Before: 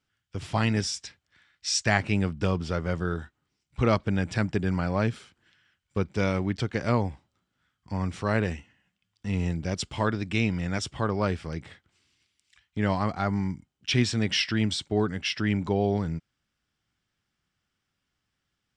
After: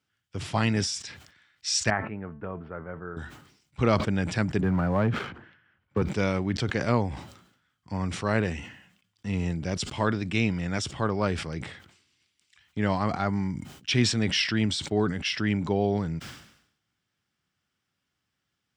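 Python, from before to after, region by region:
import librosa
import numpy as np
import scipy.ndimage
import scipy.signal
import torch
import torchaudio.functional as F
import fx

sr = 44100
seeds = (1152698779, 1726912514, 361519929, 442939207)

y = fx.chain(x, sr, fx.lowpass(hz=1700.0, slope=24),
    fx.low_shelf(hz=340.0, db=-8.0),
    fx.comb_fb(f0_hz=220.0, decay_s=0.35, harmonics='all', damping=0.0, mix_pct=50), at=(1.9, 3.17))
y = fx.chain(y, sr, fx.lowpass(hz=1700.0, slope=12),
    fx.leveller(passes=1),
    fx.band_squash(depth_pct=40), at=(4.61, 6.02))
y = scipy.signal.sosfilt(scipy.signal.butter(2, 80.0, 'highpass', fs=sr, output='sos'), y)
y = fx.sustainer(y, sr, db_per_s=79.0)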